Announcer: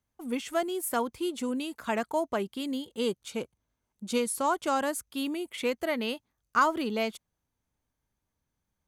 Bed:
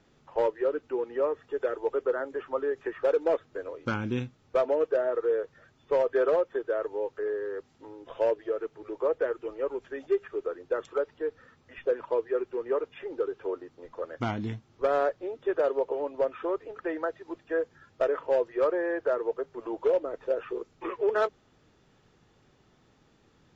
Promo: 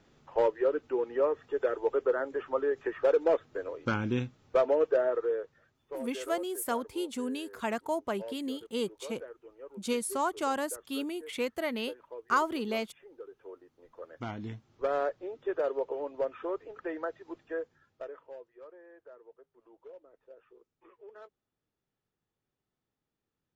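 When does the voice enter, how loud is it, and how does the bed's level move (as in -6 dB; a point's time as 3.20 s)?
5.75 s, -3.0 dB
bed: 5.06 s 0 dB
6.06 s -16.5 dB
13.25 s -16.5 dB
14.69 s -4.5 dB
17.43 s -4.5 dB
18.56 s -25 dB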